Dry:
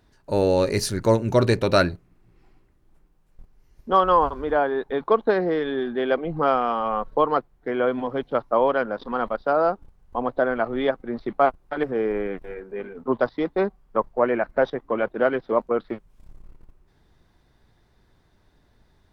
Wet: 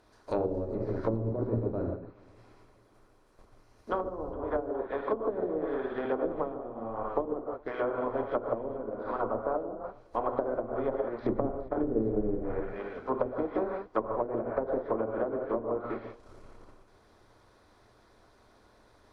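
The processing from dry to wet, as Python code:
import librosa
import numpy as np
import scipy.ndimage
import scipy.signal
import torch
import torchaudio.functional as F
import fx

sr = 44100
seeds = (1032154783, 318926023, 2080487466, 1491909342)

y = fx.bin_compress(x, sr, power=0.6)
y = fx.lowpass(y, sr, hz=1400.0, slope=12, at=(9.18, 9.68), fade=0.02)
y = fx.low_shelf(y, sr, hz=410.0, db=9.0, at=(11.23, 12.61))
y = fx.rev_gated(y, sr, seeds[0], gate_ms=200, shape='flat', drr_db=-1.0)
y = fx.hpss(y, sr, part='harmonic', gain_db=-5)
y = fx.env_lowpass_down(y, sr, base_hz=350.0, full_db=-13.0)
y = fx.peak_eq(y, sr, hz=160.0, db=-10.5, octaves=0.53)
y = fx.echo_feedback(y, sr, ms=416, feedback_pct=41, wet_db=-18.5)
y = fx.upward_expand(y, sr, threshold_db=-40.0, expansion=1.5)
y = y * 10.0 ** (-7.5 / 20.0)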